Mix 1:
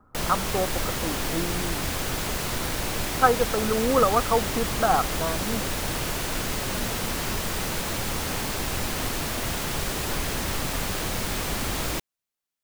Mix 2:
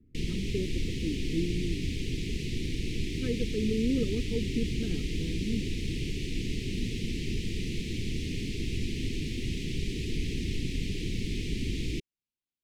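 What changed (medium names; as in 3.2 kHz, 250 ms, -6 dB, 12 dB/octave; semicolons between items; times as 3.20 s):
background: add tape spacing loss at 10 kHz 21 dB; master: add inverse Chebyshev band-stop 590–1500 Hz, stop band 40 dB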